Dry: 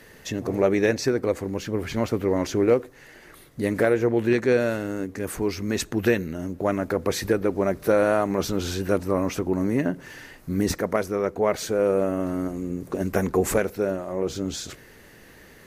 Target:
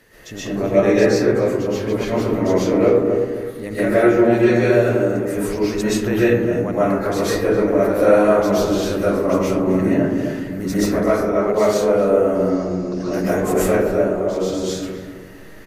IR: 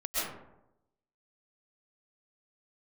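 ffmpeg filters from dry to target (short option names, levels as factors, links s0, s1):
-filter_complex "[0:a]asettb=1/sr,asplit=3[s0][s1][s2];[s0]atrim=end=3.834[s3];[s1]atrim=start=3.83:end=4.59,asetpts=PTS-STARTPTS,afade=t=in:d=0.004:c=qsin,afade=t=out:st=0.756:d=0.004:c=qsin,aecho=1:1:5.4:0.65,atrim=end_sample=33516[s4];[s2]atrim=start=4.586[s5];[s3][s4]acrossfade=d=0.004:c1=hsin:c2=qsin[s6];[s6][s5]acrossfade=d=0.004:c1=qsin:c2=hsin,asettb=1/sr,asplit=3[s7][s8][s9];[s7]atrim=end=12.354[s10];[s8]atrim=start=12.35:end=13.14,asetpts=PTS-STARTPTS,afade=t=in:d=0.004:c=qsin,afade=t=out:st=0.786:d=0.004:c=qsin,lowpass=f=5100:t=q:w=8.1[s11];[s9]atrim=start=13.136[s12];[s10][s11]acrossfade=d=0.004:c1=hsin:c2=qsin[s13];[s13][s12]acrossfade=d=0.004:c1=qsin:c2=hsin,asplit=2[s14][s15];[s15]adelay=260,lowpass=f=850:p=1,volume=0.668,asplit=2[s16][s17];[s17]adelay=260,lowpass=f=850:p=1,volume=0.39,asplit=2[s18][s19];[s19]adelay=260,lowpass=f=850:p=1,volume=0.39,asplit=2[s20][s21];[s21]adelay=260,lowpass=f=850:p=1,volume=0.39,asplit=2[s22][s23];[s23]adelay=260,lowpass=f=850:p=1,volume=0.39[s24];[s14][s16][s18][s20][s22][s24]amix=inputs=6:normalize=0[s25];[1:a]atrim=start_sample=2205[s26];[s25][s26]afir=irnorm=-1:irlink=0,volume=0.794"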